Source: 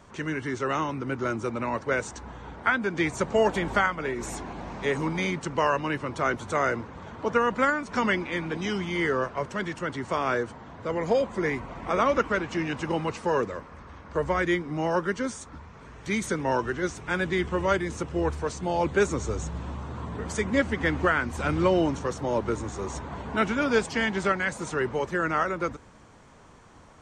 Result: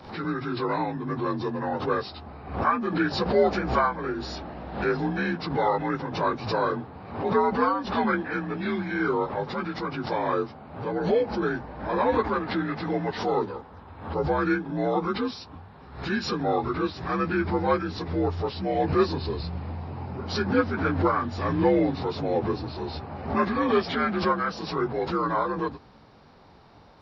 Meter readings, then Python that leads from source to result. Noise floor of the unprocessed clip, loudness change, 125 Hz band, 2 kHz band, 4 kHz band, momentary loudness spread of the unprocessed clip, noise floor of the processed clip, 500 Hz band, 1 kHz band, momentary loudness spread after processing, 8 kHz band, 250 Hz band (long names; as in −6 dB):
−49 dBFS, +0.5 dB, +1.5 dB, −3.5 dB, +1.0 dB, 10 LU, −48 dBFS, +1.0 dB, +2.0 dB, 10 LU, below −10 dB, +2.0 dB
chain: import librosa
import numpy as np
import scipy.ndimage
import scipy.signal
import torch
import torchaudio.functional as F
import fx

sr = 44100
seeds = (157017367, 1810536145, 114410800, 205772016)

y = fx.partial_stretch(x, sr, pct=86)
y = fx.pre_swell(y, sr, db_per_s=93.0)
y = F.gain(torch.from_numpy(y), 2.0).numpy()